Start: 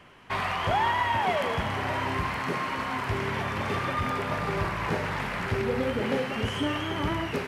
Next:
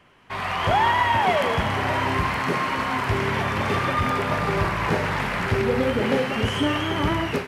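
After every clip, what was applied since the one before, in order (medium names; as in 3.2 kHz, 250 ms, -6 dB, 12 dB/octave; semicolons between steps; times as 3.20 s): level rider gain up to 9.5 dB; trim -3.5 dB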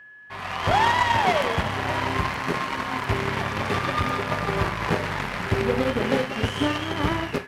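Chebyshev shaper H 7 -21 dB, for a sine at -8.5 dBFS; whistle 1.7 kHz -44 dBFS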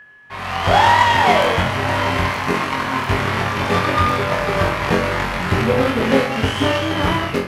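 flutter echo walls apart 3.8 m, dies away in 0.33 s; on a send at -12 dB: reverberation RT60 0.75 s, pre-delay 47 ms; on the sum: trim +4.5 dB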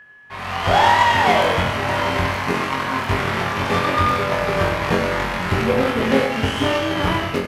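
delay 97 ms -9.5 dB; trim -2 dB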